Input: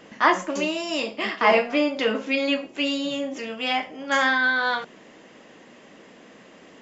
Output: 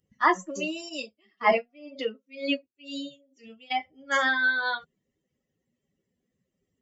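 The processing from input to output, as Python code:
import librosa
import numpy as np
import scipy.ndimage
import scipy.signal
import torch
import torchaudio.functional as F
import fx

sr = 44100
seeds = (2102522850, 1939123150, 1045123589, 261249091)

y = fx.bin_expand(x, sr, power=2.0)
y = fx.tremolo_db(y, sr, hz=2.0, depth_db=29, at=(0.88, 3.7), fade=0.02)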